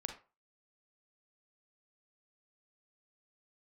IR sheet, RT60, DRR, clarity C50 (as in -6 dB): 0.35 s, 4.5 dB, 7.5 dB